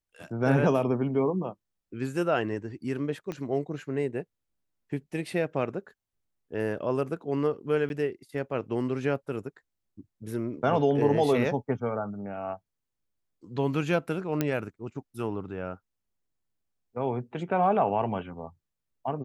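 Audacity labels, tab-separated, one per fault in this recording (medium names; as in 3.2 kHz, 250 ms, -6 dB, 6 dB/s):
3.320000	3.320000	pop -22 dBFS
7.890000	7.900000	dropout 11 ms
14.410000	14.410000	pop -12 dBFS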